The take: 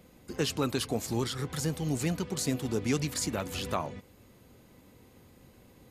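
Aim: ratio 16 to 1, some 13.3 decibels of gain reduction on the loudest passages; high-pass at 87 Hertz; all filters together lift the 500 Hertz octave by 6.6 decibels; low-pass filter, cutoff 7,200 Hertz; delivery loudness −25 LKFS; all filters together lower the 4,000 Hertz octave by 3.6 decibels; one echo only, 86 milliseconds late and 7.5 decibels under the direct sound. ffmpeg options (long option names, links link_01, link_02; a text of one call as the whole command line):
ffmpeg -i in.wav -af "highpass=87,lowpass=7200,equalizer=frequency=500:width_type=o:gain=8,equalizer=frequency=4000:width_type=o:gain=-4.5,acompressor=threshold=-33dB:ratio=16,aecho=1:1:86:0.422,volume=13.5dB" out.wav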